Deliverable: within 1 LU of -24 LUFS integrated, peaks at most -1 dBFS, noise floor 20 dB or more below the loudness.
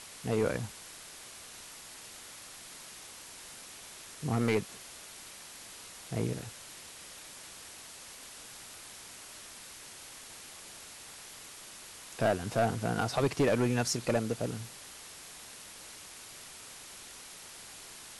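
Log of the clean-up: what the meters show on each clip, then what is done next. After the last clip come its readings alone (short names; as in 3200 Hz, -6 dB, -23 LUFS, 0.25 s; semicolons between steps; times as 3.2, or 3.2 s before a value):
clipped 0.5%; flat tops at -21.5 dBFS; noise floor -49 dBFS; noise floor target -57 dBFS; loudness -37.0 LUFS; peak -21.5 dBFS; loudness target -24.0 LUFS
-> clip repair -21.5 dBFS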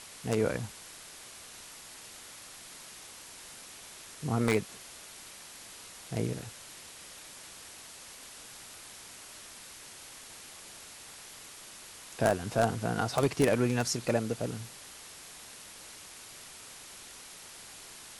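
clipped 0.0%; noise floor -49 dBFS; noise floor target -56 dBFS
-> denoiser 7 dB, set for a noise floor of -49 dBFS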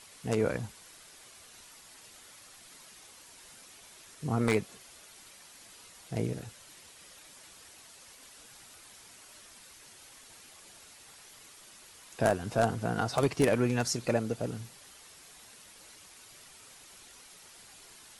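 noise floor -54 dBFS; loudness -31.0 LUFS; peak -12.5 dBFS; loudness target -24.0 LUFS
-> gain +7 dB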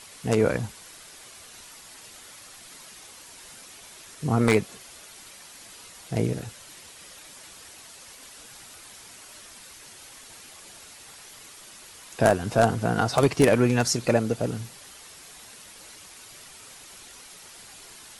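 loudness -24.0 LUFS; peak -5.5 dBFS; noise floor -47 dBFS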